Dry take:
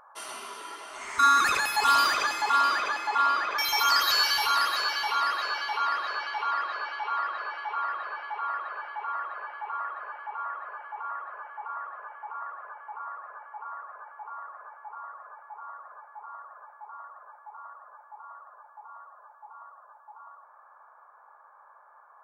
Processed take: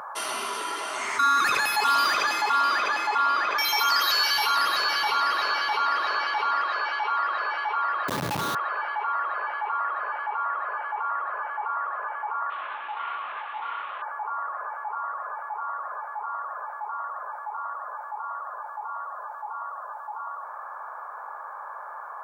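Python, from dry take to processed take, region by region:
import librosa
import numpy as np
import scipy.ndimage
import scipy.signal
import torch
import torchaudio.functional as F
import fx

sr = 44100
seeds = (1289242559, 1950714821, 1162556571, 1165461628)

y = fx.chain(x, sr, fx.low_shelf(hz=240.0, db=9.0),
    fx.echo_single(ms=332, db=-11.0), at=(4.57, 6.62))
y = fx.chain(y, sr, fx.steep_highpass(hz=560.0, slope=72),
    fx.schmitt(flips_db=-34.5), at=(8.08, 8.55))
y = fx.chain(y, sr, fx.cvsd(bps=16000),
    fx.highpass(hz=630.0, slope=12),
    fx.detune_double(cents=40), at=(12.5, 14.02))
y = scipy.signal.sosfilt(scipy.signal.butter(4, 110.0, 'highpass', fs=sr, output='sos'), y)
y = fx.dynamic_eq(y, sr, hz=7700.0, q=2.6, threshold_db=-52.0, ratio=4.0, max_db=-6)
y = fx.env_flatten(y, sr, amount_pct=50)
y = F.gain(torch.from_numpy(y), -2.0).numpy()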